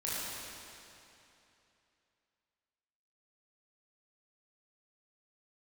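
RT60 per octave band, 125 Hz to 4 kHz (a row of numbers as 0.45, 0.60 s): 3.0, 2.9, 2.9, 2.9, 2.8, 2.6 s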